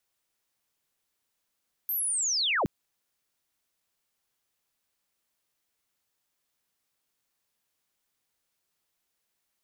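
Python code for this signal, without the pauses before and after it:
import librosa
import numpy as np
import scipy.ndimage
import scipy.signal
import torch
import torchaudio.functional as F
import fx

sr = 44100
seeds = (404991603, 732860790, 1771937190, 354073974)

y = fx.chirp(sr, length_s=0.77, from_hz=13000.0, to_hz=80.0, law='linear', from_db=-27.0, to_db=-23.0)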